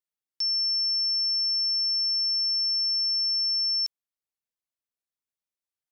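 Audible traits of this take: noise floor -94 dBFS; spectral tilt +1.5 dB/octave

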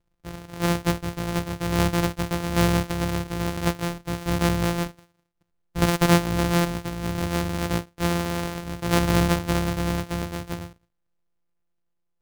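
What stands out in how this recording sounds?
a buzz of ramps at a fixed pitch in blocks of 256 samples; tremolo saw down 0.56 Hz, depth 40%

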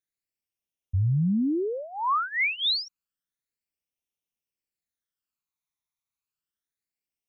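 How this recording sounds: phasing stages 12, 0.3 Hz, lowest notch 500–1500 Hz

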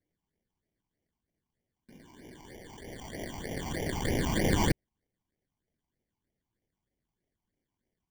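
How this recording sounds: aliases and images of a low sample rate 1.3 kHz, jitter 0%; phasing stages 8, 3.2 Hz, lowest notch 500–1300 Hz

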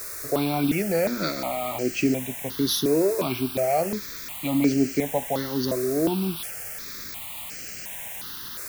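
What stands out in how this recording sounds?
a quantiser's noise floor 6-bit, dither triangular; notches that jump at a steady rate 2.8 Hz 830–3600 Hz

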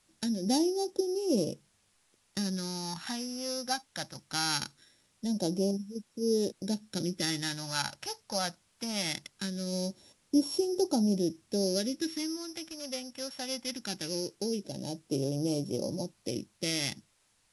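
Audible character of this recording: a buzz of ramps at a fixed pitch in blocks of 8 samples; phasing stages 2, 0.21 Hz, lowest notch 360–1800 Hz; a quantiser's noise floor 12-bit, dither triangular; AAC

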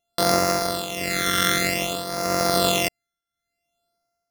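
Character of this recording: a buzz of ramps at a fixed pitch in blocks of 64 samples; phasing stages 12, 0.54 Hz, lowest notch 800–3100 Hz; tremolo triangle 0.85 Hz, depth 75%

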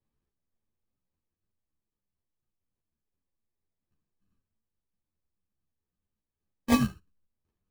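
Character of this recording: a buzz of ramps at a fixed pitch in blocks of 16 samples; phasing stages 12, 0.34 Hz, lowest notch 560–1200 Hz; aliases and images of a low sample rate 1.4 kHz, jitter 0%; a shimmering, thickened sound

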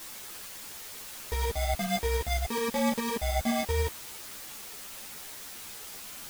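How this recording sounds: aliases and images of a low sample rate 1.4 kHz, jitter 0%; tremolo saw up 9.7 Hz, depth 40%; a quantiser's noise floor 8-bit, dither triangular; a shimmering, thickened sound

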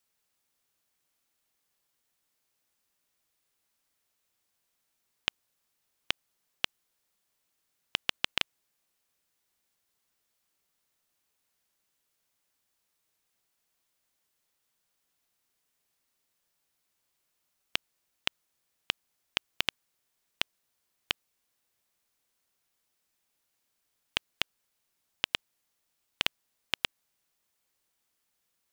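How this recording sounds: noise floor -79 dBFS; spectral tilt -2.5 dB/octave

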